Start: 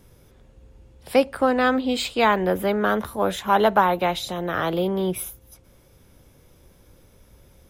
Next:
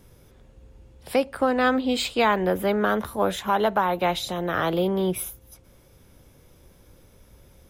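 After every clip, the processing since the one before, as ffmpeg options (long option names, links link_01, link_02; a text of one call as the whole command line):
ffmpeg -i in.wav -af "alimiter=limit=-11dB:level=0:latency=1:release=323" out.wav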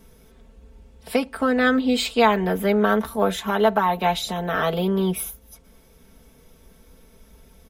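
ffmpeg -i in.wav -af "aecho=1:1:4.5:0.81" out.wav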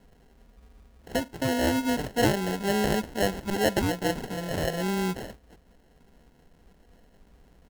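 ffmpeg -i in.wav -af "acrusher=samples=37:mix=1:aa=0.000001,volume=-6dB" out.wav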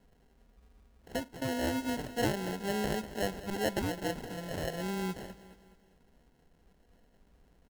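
ffmpeg -i in.wav -af "aecho=1:1:209|418|627|836:0.168|0.0789|0.0371|0.0174,volume=-7.5dB" out.wav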